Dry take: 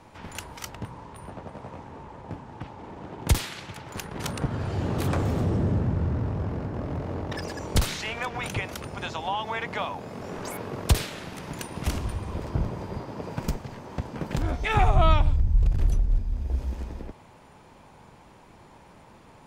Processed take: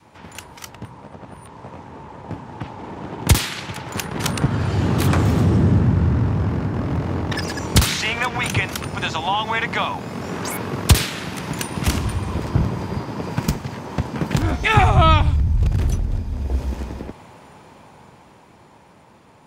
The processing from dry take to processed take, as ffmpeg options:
-filter_complex "[0:a]asplit=3[s0][s1][s2];[s0]atrim=end=1.012[s3];[s1]atrim=start=1.008:end=1.612,asetpts=PTS-STARTPTS,areverse[s4];[s2]atrim=start=1.608[s5];[s3][s4]acrossfade=d=0.004:c1=hsin:c2=hsin[s6];[s6][s5]acrossfade=d=0.004:c1=hsin:c2=hsin,highpass=76,adynamicequalizer=threshold=0.00501:dfrequency=560:dqfactor=1.2:tfrequency=560:tqfactor=1.2:attack=5:release=100:ratio=0.375:range=3.5:mode=cutabove:tftype=bell,dynaudnorm=f=350:g=13:m=3.55,volume=1.19"

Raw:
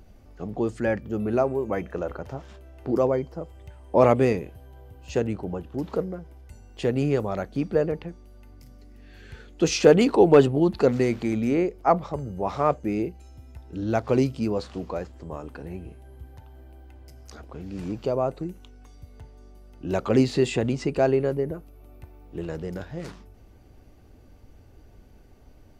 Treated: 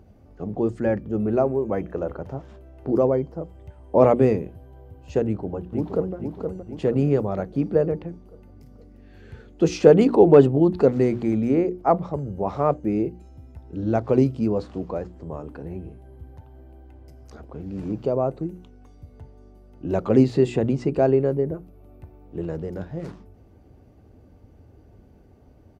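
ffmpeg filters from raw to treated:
-filter_complex "[0:a]asplit=2[s0][s1];[s1]afade=t=in:st=5.25:d=0.01,afade=t=out:st=6.15:d=0.01,aecho=0:1:470|940|1410|1880|2350|2820|3290:0.530884|0.291986|0.160593|0.0883259|0.0485792|0.0267186|0.0146952[s2];[s0][s2]amix=inputs=2:normalize=0,highpass=64,tiltshelf=f=1200:g=6.5,bandreject=f=60:t=h:w=6,bandreject=f=120:t=h:w=6,bandreject=f=180:t=h:w=6,bandreject=f=240:t=h:w=6,bandreject=f=300:t=h:w=6,bandreject=f=360:t=h:w=6,volume=0.794"

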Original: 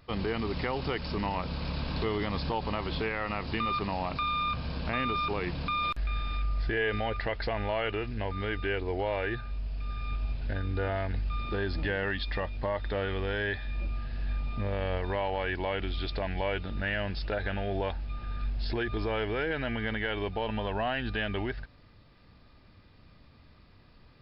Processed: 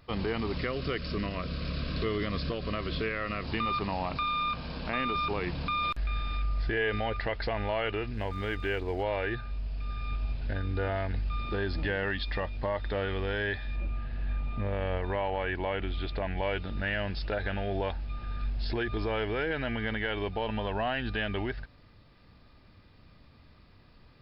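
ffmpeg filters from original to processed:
-filter_complex "[0:a]asettb=1/sr,asplit=3[s0][s1][s2];[s0]atrim=end=0.574[s3];[s1]atrim=start=0.57:end=3.44,asetpts=PTS-STARTPTS,afade=t=in:d=0.004:c=qsin,afade=t=out:st=2.866:d=0.004:c=qsin,asuperstop=centerf=850:order=4:qfactor=2.3[s4];[s2]atrim=start=3.436[s5];[s3][s4]acrossfade=d=0.004:c1=hsin:c2=qsin[s6];[s6][s5]acrossfade=d=0.004:c1=qsin:c2=hsin,asettb=1/sr,asplit=3[s7][s8][s9];[s7]atrim=end=4.234[s10];[s8]atrim=start=4.23:end=5.15,asetpts=PTS-STARTPTS,afade=t=in:d=0.004:c=qsin,afade=t=out:st=0.916:d=0.004:c=qsin,equalizer=f=91:t=o:w=0.77:g=-12.5[s11];[s9]atrim=start=5.146[s12];[s10][s11]acrossfade=d=0.004:c1=hsin:c2=qsin[s13];[s13][s12]acrossfade=d=0.004:c1=qsin:c2=hsin,asettb=1/sr,asplit=3[s14][s15][s16];[s14]atrim=end=8.144[s17];[s15]atrim=start=8.14:end=9.03,asetpts=PTS-STARTPTS,afade=t=in:d=0.004:c=qsin,afade=t=out:st=0.886:d=0.004:c=qsin,aeval=exprs='sgn(val(0))*max(abs(val(0))-0.00158,0)':c=same[s18];[s16]atrim=start=9.026[s19];[s17][s18]acrossfade=d=0.004:c1=hsin:c2=qsin[s20];[s20][s19]acrossfade=d=0.004:c1=qsin:c2=hsin,asettb=1/sr,asplit=3[s21][s22][s23];[s21]atrim=end=13.764[s24];[s22]atrim=start=13.76:end=16.43,asetpts=PTS-STARTPTS,afade=t=in:d=0.004:c=qsin,afade=t=out:st=2.666:d=0.004:c=qsin,lowpass=3200[s25];[s23]atrim=start=16.426[s26];[s24][s25]acrossfade=d=0.004:c1=hsin:c2=qsin[s27];[s27][s26]acrossfade=d=0.004:c1=qsin:c2=hsin"

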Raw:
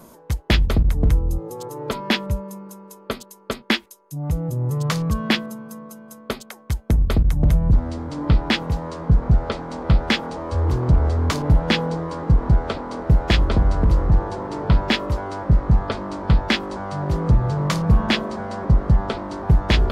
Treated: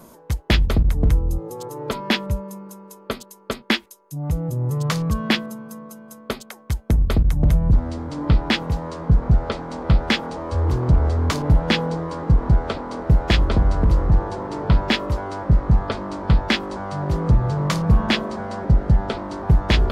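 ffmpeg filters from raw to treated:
-filter_complex "[0:a]asettb=1/sr,asplit=3[s0][s1][s2];[s0]atrim=end=18.604[s3];[s1]atrim=start=18.6:end=19.12,asetpts=PTS-STARTPTS,afade=t=in:d=0.004:c=qsin,afade=t=out:st=0.516:d=0.004:c=qsin,bandreject=f=1100:w=5.6[s4];[s2]atrim=start=19.116[s5];[s3][s4]acrossfade=d=0.004:c1=hsin:c2=qsin[s6];[s6][s5]acrossfade=d=0.004:c1=qsin:c2=hsin"

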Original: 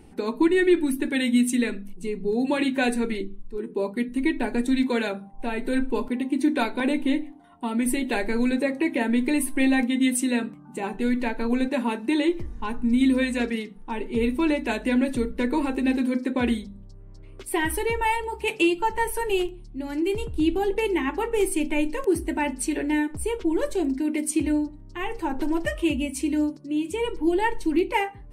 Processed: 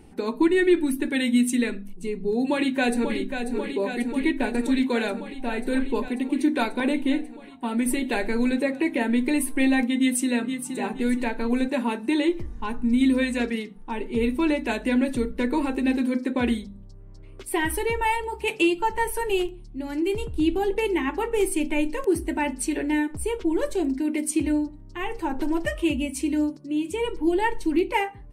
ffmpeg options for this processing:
-filter_complex "[0:a]asplit=2[s0][s1];[s1]afade=t=in:st=2.35:d=0.01,afade=t=out:st=3.18:d=0.01,aecho=0:1:540|1080|1620|2160|2700|3240|3780|4320|4860|5400|5940|6480:0.421697|0.337357|0.269886|0.215909|0.172727|0.138182|0.110545|0.0884362|0.0707489|0.0565991|0.0452793|0.0362235[s2];[s0][s2]amix=inputs=2:normalize=0,asplit=2[s3][s4];[s4]afade=t=in:st=9.97:d=0.01,afade=t=out:st=10.77:d=0.01,aecho=0:1:470|940|1410|1880:0.398107|0.119432|0.0358296|0.0107489[s5];[s3][s5]amix=inputs=2:normalize=0"

